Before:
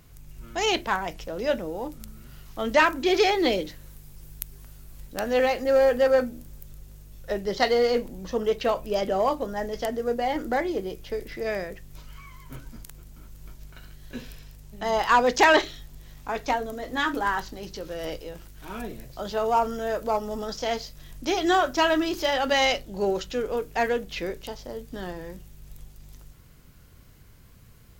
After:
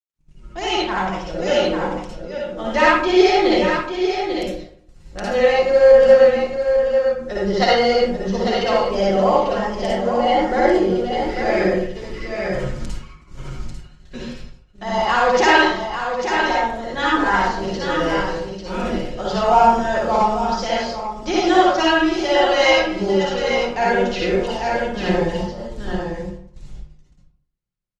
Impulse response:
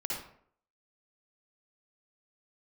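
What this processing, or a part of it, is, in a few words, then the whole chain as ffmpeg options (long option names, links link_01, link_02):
speakerphone in a meeting room: -filter_complex "[0:a]aecho=1:1:5.6:0.56,agate=range=-54dB:threshold=-39dB:ratio=16:detection=peak,lowpass=frequency=7300:width=0.5412,lowpass=frequency=7300:width=1.3066,aecho=1:1:845:0.422[link_01];[1:a]atrim=start_sample=2205[link_02];[link_01][link_02]afir=irnorm=-1:irlink=0,asplit=2[link_03][link_04];[link_04]adelay=250,highpass=300,lowpass=3400,asoftclip=type=hard:threshold=-11dB,volume=-29dB[link_05];[link_03][link_05]amix=inputs=2:normalize=0,dynaudnorm=framelen=150:gausssize=17:maxgain=16dB,volume=-1dB" -ar 48000 -c:a libopus -b:a 32k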